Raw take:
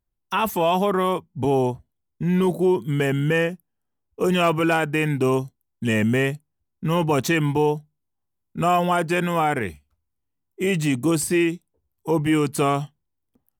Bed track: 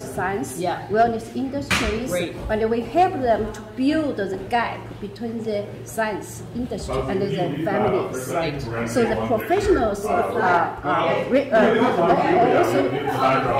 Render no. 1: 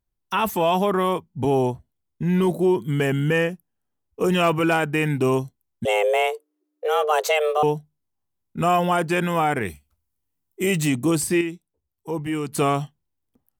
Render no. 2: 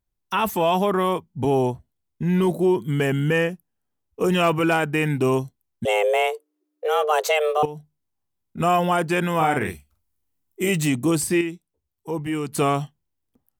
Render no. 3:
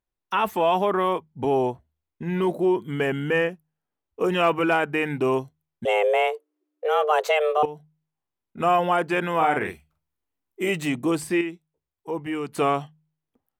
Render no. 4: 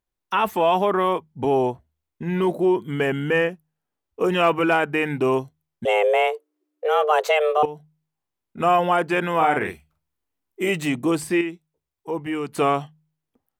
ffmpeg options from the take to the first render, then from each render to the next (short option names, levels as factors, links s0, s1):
-filter_complex "[0:a]asettb=1/sr,asplit=3[s0][s1][s2];[s0]atrim=end=5.854[s3];[s1]atrim=start=5.85:end=7.63,asetpts=PTS-STARTPTS,afade=t=in:d=0.004:c=qsin,afade=t=out:st=1.776:d=0.004:c=qsin,afreqshift=300[s4];[s2]atrim=start=7.626[s5];[s3][s4]acrossfade=d=0.004:c1=hsin:c2=qsin[s6];[s6][s5]acrossfade=d=0.004:c1=qsin:c2=hsin,asettb=1/sr,asplit=3[s7][s8][s9];[s7]atrim=end=9.654[s10];[s8]atrim=start=9.65:end=10.9,asetpts=PTS-STARTPTS,afade=t=in:d=0.004:c=qsin,afade=t=out:st=1.246:d=0.004:c=qsin,highshelf=f=6000:g=9[s11];[s9]atrim=start=10.896[s12];[s10][s11]acrossfade=d=0.004:c1=hsin:c2=qsin[s13];[s13][s12]acrossfade=d=0.004:c1=qsin:c2=hsin,asplit=3[s14][s15][s16];[s14]atrim=end=11.412[s17];[s15]atrim=start=11.408:end=12.522,asetpts=PTS-STARTPTS,volume=0.473[s18];[s16]atrim=start=12.518[s19];[s17][s18]acrossfade=d=0.004:c1=hsin:c2=hsin[s20];[s20][s19]acrossfade=d=0.004:c1=hsin:c2=hsin"
-filter_complex "[0:a]asettb=1/sr,asplit=3[s0][s1][s2];[s0]atrim=end=7.654[s3];[s1]atrim=start=7.65:end=8.6,asetpts=PTS-STARTPTS,afade=t=in:d=0.004:c=qsin,afade=t=out:st=0.946:d=0.004:c=qsin,acompressor=threshold=0.0355:ratio=6:attack=3.2:release=140:knee=1:detection=peak[s4];[s2]atrim=start=8.596[s5];[s3][s4]acrossfade=d=0.004:c1=hsin:c2=qsin[s6];[s6][s5]acrossfade=d=0.004:c1=qsin:c2=hsin,asettb=1/sr,asplit=3[s7][s8][s9];[s7]atrim=end=9.364[s10];[s8]atrim=start=9.36:end=10.69,asetpts=PTS-STARTPTS,afade=t=in:d=0.004:c=qsin,afade=t=out:st=1.326:d=0.004:c=qsin,asplit=2[s11][s12];[s12]adelay=44,volume=0.531[s13];[s11][s13]amix=inputs=2:normalize=0,atrim=end_sample=58653[s14];[s9]atrim=start=10.686[s15];[s10][s14]acrossfade=d=0.004:c1=hsin:c2=qsin[s16];[s16][s15]acrossfade=d=0.004:c1=qsin:c2=hsin"
-af "bass=f=250:g=-9,treble=f=4000:g=-11,bandreject=f=77.63:t=h:w=4,bandreject=f=155.26:t=h:w=4"
-af "volume=1.26"